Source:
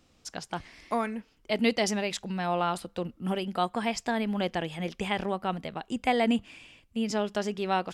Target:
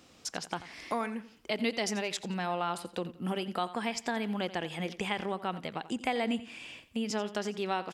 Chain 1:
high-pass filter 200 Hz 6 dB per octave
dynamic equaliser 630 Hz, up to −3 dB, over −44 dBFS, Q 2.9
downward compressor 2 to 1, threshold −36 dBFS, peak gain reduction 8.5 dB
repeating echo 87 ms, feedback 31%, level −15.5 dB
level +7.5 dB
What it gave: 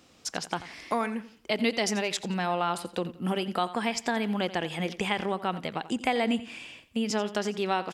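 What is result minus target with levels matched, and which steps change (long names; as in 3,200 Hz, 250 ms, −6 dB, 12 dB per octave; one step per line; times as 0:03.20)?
downward compressor: peak gain reduction −4.5 dB
change: downward compressor 2 to 1, threshold −45 dBFS, peak gain reduction 13 dB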